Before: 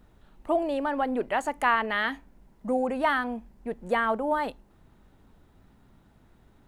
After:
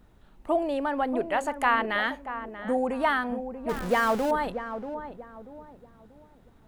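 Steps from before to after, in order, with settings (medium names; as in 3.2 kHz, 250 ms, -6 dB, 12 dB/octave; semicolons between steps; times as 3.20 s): 3.69–4.31 s: jump at every zero crossing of -30 dBFS; filtered feedback delay 636 ms, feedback 37%, low-pass 930 Hz, level -8 dB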